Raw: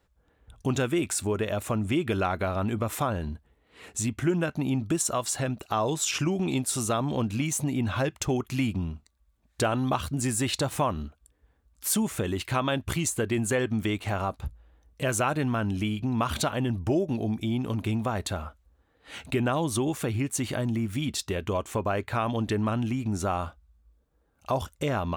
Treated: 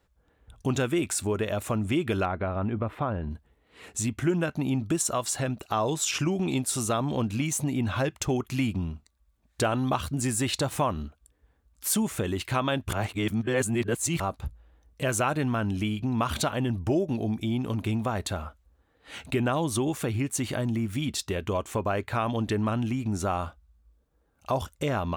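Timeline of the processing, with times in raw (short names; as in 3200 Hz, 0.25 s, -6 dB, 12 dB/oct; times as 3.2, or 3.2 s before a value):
2.25–3.31 air absorption 470 m
12.93–14.2 reverse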